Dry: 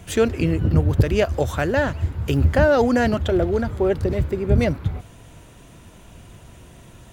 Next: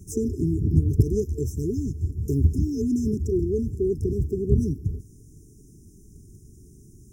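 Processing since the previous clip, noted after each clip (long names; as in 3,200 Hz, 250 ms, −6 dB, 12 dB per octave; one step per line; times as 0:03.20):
brick-wall band-stop 450–5,100 Hz
in parallel at −2 dB: output level in coarse steps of 14 dB
on the sum: level −5.5 dB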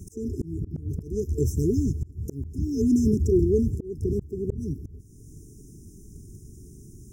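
volume swells 439 ms
level +3.5 dB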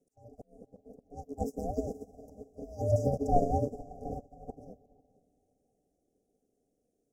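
ring modulation 350 Hz
feedback delay with all-pass diffusion 488 ms, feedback 47%, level −8.5 dB
expander for the loud parts 2.5 to 1, over −40 dBFS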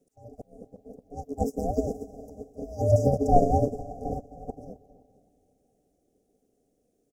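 repeating echo 260 ms, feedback 44%, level −20.5 dB
level +6.5 dB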